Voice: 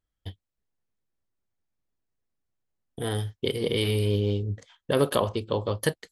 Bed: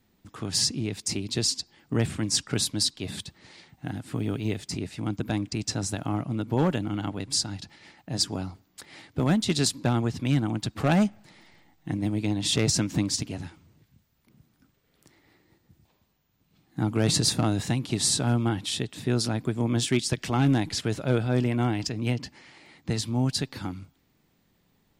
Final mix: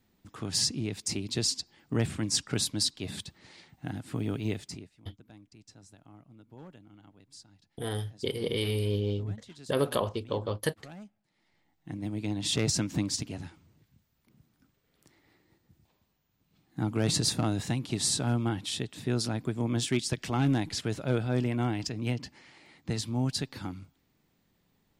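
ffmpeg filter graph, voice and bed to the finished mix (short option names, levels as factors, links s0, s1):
-filter_complex "[0:a]adelay=4800,volume=0.596[s0];[1:a]volume=7.94,afade=t=out:st=4.54:d=0.36:silence=0.0794328,afade=t=in:st=11.3:d=1.2:silence=0.0891251[s1];[s0][s1]amix=inputs=2:normalize=0"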